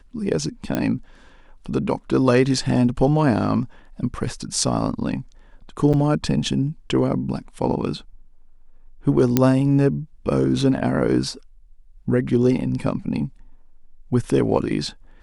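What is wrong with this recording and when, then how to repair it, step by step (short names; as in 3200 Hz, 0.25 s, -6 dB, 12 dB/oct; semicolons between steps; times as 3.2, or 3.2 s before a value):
0.75 pop -9 dBFS
5.93–5.94 gap 6.8 ms
9.37 pop -2 dBFS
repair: de-click; interpolate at 5.93, 6.8 ms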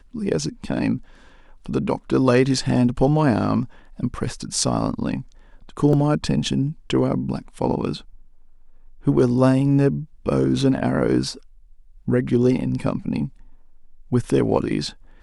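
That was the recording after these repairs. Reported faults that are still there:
none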